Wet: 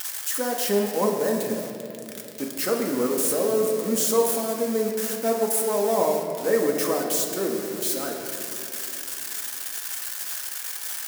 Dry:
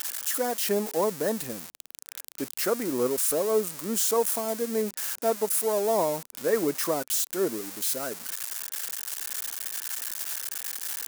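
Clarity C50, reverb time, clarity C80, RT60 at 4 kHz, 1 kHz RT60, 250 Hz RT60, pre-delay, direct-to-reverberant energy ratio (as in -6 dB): 3.5 dB, 2.8 s, 4.5 dB, 1.7 s, 2.4 s, 3.7 s, 4 ms, 0.0 dB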